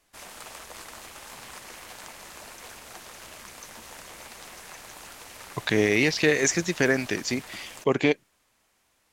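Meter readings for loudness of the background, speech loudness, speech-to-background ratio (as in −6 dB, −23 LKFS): −42.5 LKFS, −24.5 LKFS, 18.0 dB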